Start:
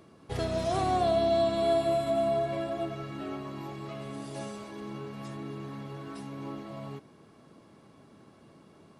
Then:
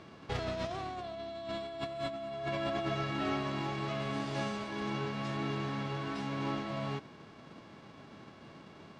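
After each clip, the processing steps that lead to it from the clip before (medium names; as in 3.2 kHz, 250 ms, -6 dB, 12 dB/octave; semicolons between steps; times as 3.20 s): formants flattened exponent 0.6; distance through air 170 m; compressor with a negative ratio -36 dBFS, ratio -1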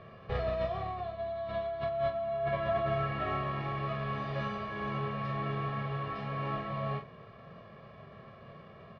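distance through air 350 m; comb 1.7 ms, depth 89%; early reflections 28 ms -7.5 dB, 46 ms -8.5 dB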